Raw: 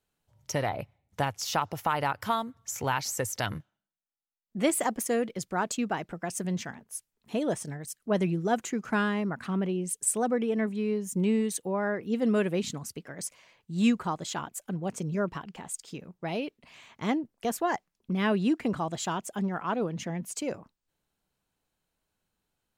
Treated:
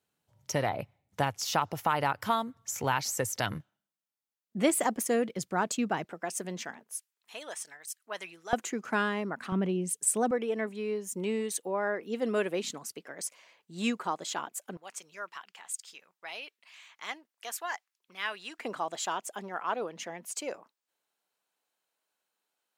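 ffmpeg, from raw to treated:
ffmpeg -i in.wav -af "asetnsamples=nb_out_samples=441:pad=0,asendcmd='6.05 highpass f 320;6.96 highpass f 1200;8.53 highpass f 270;9.52 highpass f 100;10.31 highpass f 350;14.77 highpass f 1300;18.59 highpass f 500',highpass=100" out.wav

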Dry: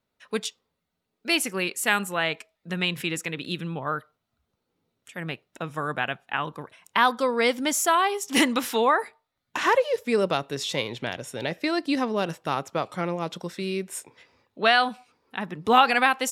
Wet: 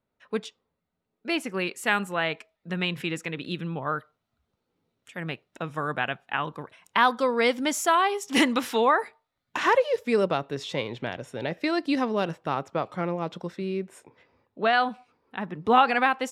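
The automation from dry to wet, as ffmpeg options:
ffmpeg -i in.wav -af "asetnsamples=nb_out_samples=441:pad=0,asendcmd='1.54 lowpass f 2800;3.83 lowpass f 4900;10.26 lowpass f 2000;11.57 lowpass f 4400;12.29 lowpass f 1900;13.56 lowpass f 1100;14.73 lowpass f 1800',lowpass=frequency=1500:poles=1" out.wav

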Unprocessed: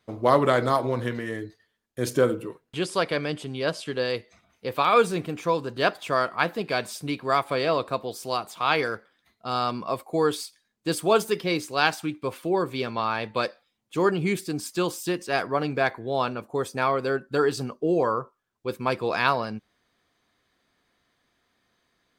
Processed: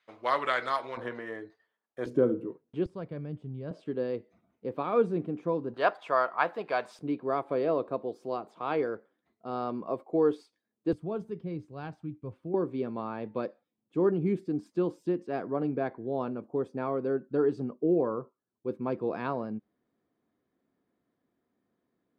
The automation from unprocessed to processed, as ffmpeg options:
ffmpeg -i in.wav -af "asetnsamples=nb_out_samples=441:pad=0,asendcmd='0.97 bandpass f 860;2.06 bandpass f 280;2.86 bandpass f 100;3.71 bandpass f 270;5.74 bandpass f 850;6.99 bandpass f 350;10.93 bandpass f 100;12.54 bandpass f 270',bandpass=frequency=2100:width_type=q:width=1.1:csg=0" out.wav

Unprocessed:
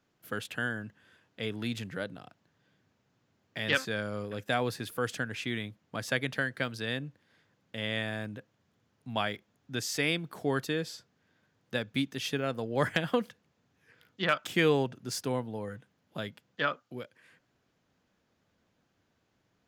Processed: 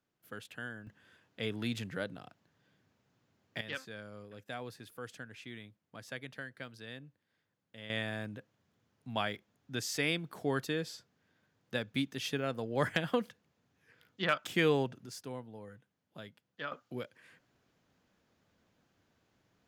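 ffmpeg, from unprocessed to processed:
ffmpeg -i in.wav -af "asetnsamples=nb_out_samples=441:pad=0,asendcmd='0.87 volume volume -1.5dB;3.61 volume volume -13dB;7.9 volume volume -3dB;15.06 volume volume -11dB;16.72 volume volume 0.5dB',volume=-10dB" out.wav

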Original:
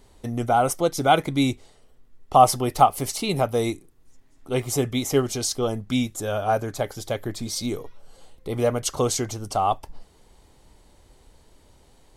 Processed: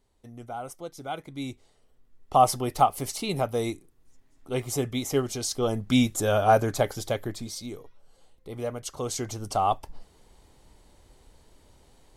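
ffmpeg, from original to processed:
ffmpeg -i in.wav -af "volume=11dB,afade=type=in:start_time=1.26:duration=1.09:silence=0.251189,afade=type=in:start_time=5.47:duration=0.59:silence=0.421697,afade=type=out:start_time=6.7:duration=0.92:silence=0.223872,afade=type=in:start_time=9.01:duration=0.42:silence=0.398107" out.wav

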